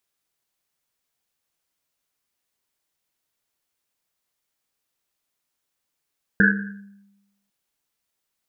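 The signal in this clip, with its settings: Risset drum, pitch 200 Hz, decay 1.04 s, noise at 1.6 kHz, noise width 230 Hz, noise 55%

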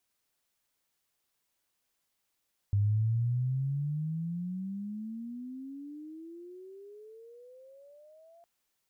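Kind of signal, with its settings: gliding synth tone sine, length 5.71 s, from 99.6 Hz, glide +33.5 st, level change -32 dB, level -23 dB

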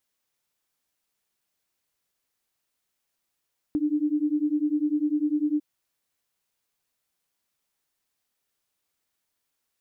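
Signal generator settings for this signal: beating tones 294 Hz, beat 10 Hz, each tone -25 dBFS 1.85 s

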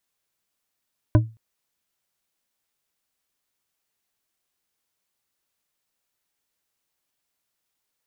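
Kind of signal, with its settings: glass hit bar, length 0.22 s, lowest mode 112 Hz, decay 0.29 s, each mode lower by 5 dB, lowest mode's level -9 dB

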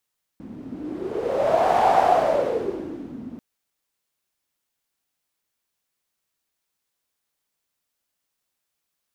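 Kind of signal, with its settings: wind-like swept noise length 2.99 s, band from 230 Hz, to 760 Hz, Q 7.1, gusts 1, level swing 19 dB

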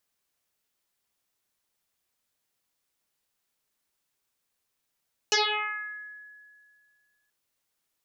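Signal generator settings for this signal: FM tone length 1.98 s, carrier 1.69 kHz, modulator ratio 0.25, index 12, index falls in 1.11 s exponential, decay 2.11 s, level -19 dB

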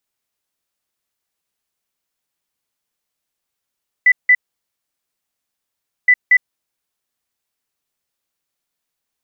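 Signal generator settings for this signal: beep pattern sine 1.99 kHz, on 0.06 s, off 0.17 s, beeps 2, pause 1.73 s, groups 2, -6.5 dBFS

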